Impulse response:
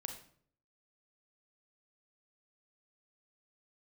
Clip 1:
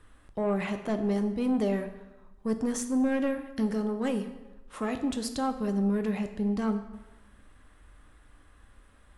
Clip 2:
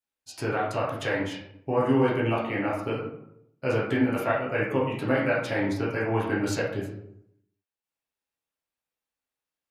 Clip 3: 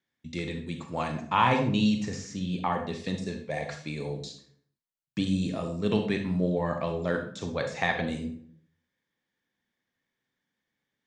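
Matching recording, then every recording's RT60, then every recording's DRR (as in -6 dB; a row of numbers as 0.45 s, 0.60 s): 3; 1.1 s, 0.75 s, 0.55 s; 6.5 dB, -7.5 dB, 4.5 dB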